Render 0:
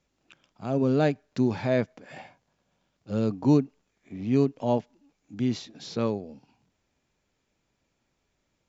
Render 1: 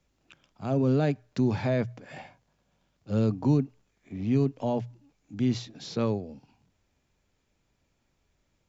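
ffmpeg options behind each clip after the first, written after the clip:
-filter_complex "[0:a]bandreject=f=60:t=h:w=6,bandreject=f=120:t=h:w=6,acrossover=split=120[s0][s1];[s0]acontrast=89[s2];[s1]alimiter=limit=0.119:level=0:latency=1:release=14[s3];[s2][s3]amix=inputs=2:normalize=0"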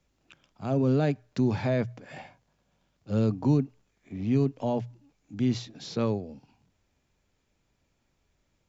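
-af anull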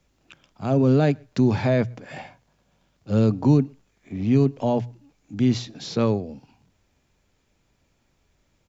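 -filter_complex "[0:a]asplit=2[s0][s1];[s1]adelay=122.4,volume=0.0316,highshelf=f=4000:g=-2.76[s2];[s0][s2]amix=inputs=2:normalize=0,volume=2"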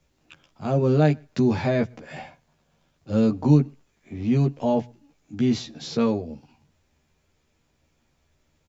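-filter_complex "[0:a]asplit=2[s0][s1];[s1]adelay=13,volume=0.708[s2];[s0][s2]amix=inputs=2:normalize=0,volume=0.75"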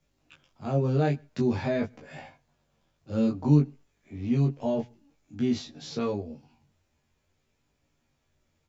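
-af "flanger=delay=20:depth=2:speed=0.51,volume=0.75"

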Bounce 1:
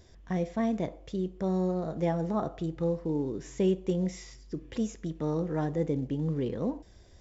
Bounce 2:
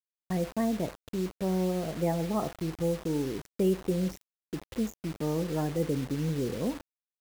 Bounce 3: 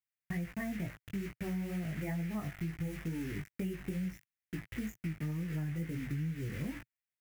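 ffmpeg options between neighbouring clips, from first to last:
-af "afftdn=nr=20:nf=-41,acrusher=bits=6:mix=0:aa=0.000001"
-af "flanger=delay=17:depth=3.7:speed=2.2,equalizer=f=125:t=o:w=1:g=8,equalizer=f=250:t=o:w=1:g=-3,equalizer=f=500:t=o:w=1:g=-12,equalizer=f=1000:t=o:w=1:g=-9,equalizer=f=2000:t=o:w=1:g=12,equalizer=f=4000:t=o:w=1:g=-10,equalizer=f=8000:t=o:w=1:g=-4,acompressor=threshold=0.0141:ratio=6,volume=1.41"

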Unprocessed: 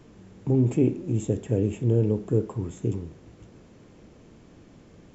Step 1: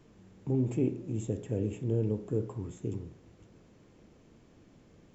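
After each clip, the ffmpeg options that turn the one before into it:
-af "bandreject=f=59.47:t=h:w=4,bandreject=f=118.94:t=h:w=4,bandreject=f=178.41:t=h:w=4,bandreject=f=237.88:t=h:w=4,bandreject=f=297.35:t=h:w=4,bandreject=f=356.82:t=h:w=4,bandreject=f=416.29:t=h:w=4,bandreject=f=475.76:t=h:w=4,bandreject=f=535.23:t=h:w=4,bandreject=f=594.7:t=h:w=4,bandreject=f=654.17:t=h:w=4,bandreject=f=713.64:t=h:w=4,bandreject=f=773.11:t=h:w=4,bandreject=f=832.58:t=h:w=4,bandreject=f=892.05:t=h:w=4,bandreject=f=951.52:t=h:w=4,bandreject=f=1010.99:t=h:w=4,bandreject=f=1070.46:t=h:w=4,bandreject=f=1129.93:t=h:w=4,bandreject=f=1189.4:t=h:w=4,bandreject=f=1248.87:t=h:w=4,bandreject=f=1308.34:t=h:w=4,bandreject=f=1367.81:t=h:w=4,bandreject=f=1427.28:t=h:w=4,bandreject=f=1486.75:t=h:w=4,bandreject=f=1546.22:t=h:w=4,bandreject=f=1605.69:t=h:w=4,bandreject=f=1665.16:t=h:w=4,bandreject=f=1724.63:t=h:w=4,bandreject=f=1784.1:t=h:w=4,volume=0.447"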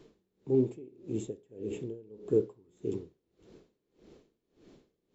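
-af "equalizer=f=100:t=o:w=0.67:g=-7,equalizer=f=400:t=o:w=0.67:g=10,equalizer=f=4000:t=o:w=0.67:g=8,aeval=exprs='val(0)*pow(10,-27*(0.5-0.5*cos(2*PI*1.7*n/s))/20)':c=same"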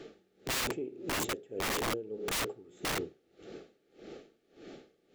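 -filter_complex "[0:a]asuperstop=centerf=1000:order=12:qfactor=4.1,asplit=2[s0][s1];[s1]highpass=f=720:p=1,volume=7.08,asoftclip=type=tanh:threshold=0.178[s2];[s0][s2]amix=inputs=2:normalize=0,lowpass=f=2500:p=1,volume=0.501,aeval=exprs='(mod(37.6*val(0)+1,2)-1)/37.6':c=same,volume=1.58"

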